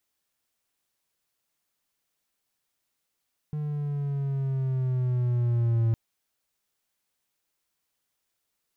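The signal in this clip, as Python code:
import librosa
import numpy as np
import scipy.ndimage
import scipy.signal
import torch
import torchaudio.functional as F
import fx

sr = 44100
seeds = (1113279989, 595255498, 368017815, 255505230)

y = fx.riser_tone(sr, length_s=2.41, level_db=-18.0, wave='triangle', hz=151.0, rise_st=-5.0, swell_db=8.0)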